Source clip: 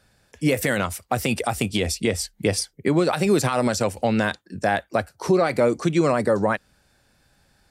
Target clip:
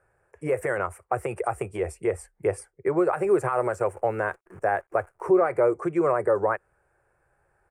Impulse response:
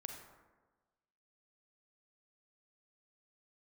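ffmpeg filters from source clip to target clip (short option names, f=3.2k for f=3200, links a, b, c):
-filter_complex "[0:a]asettb=1/sr,asplit=3[a][b][c];[a]atrim=end=3.164[d];[b]atrim=start=3.16:end=5.28,asetpts=PTS-STARTPTS,afade=t=in:d=0.004:c=qsin,afade=t=out:st=2.116:d=0.004:c=qsin,acrusher=bits=8:dc=4:mix=0:aa=0.000001[e];[c]atrim=start=5.276[f];[d][e]acrossfade=d=0.004:c1=hsin:c2=qsin[g];[g][f]acrossfade=d=0.004:c1=qsin:c2=hsin,firequalizer=gain_entry='entry(130,0);entry(250,-16);entry(360,9);entry(630,6);entry(1200,8);entry(2400,-4);entry(3700,-28);entry(8800,-3);entry(13000,-16)':delay=0.05:min_phase=1,volume=-8.5dB"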